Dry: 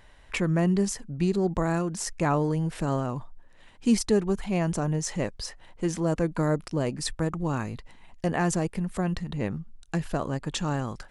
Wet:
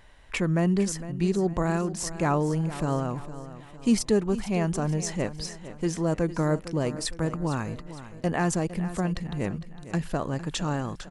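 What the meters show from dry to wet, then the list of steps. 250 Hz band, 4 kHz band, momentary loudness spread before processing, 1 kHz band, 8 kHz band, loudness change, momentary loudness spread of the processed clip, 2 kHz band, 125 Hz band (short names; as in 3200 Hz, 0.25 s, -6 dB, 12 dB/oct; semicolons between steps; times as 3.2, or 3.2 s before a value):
0.0 dB, 0.0 dB, 8 LU, 0.0 dB, 0.0 dB, 0.0 dB, 9 LU, 0.0 dB, 0.0 dB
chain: feedback echo 0.457 s, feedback 45%, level -14 dB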